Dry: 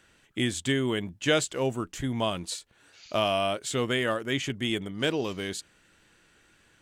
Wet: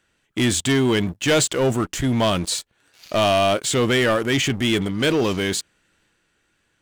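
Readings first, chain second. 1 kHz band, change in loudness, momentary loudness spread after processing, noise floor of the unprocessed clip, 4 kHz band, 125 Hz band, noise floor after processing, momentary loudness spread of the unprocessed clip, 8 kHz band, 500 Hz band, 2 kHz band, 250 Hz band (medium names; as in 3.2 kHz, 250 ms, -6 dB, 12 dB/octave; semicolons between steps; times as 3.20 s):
+8.0 dB, +8.5 dB, 6 LU, -63 dBFS, +7.5 dB, +9.5 dB, -68 dBFS, 9 LU, +11.0 dB, +8.5 dB, +7.5 dB, +9.0 dB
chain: waveshaping leveller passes 3; transient shaper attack -2 dB, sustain +3 dB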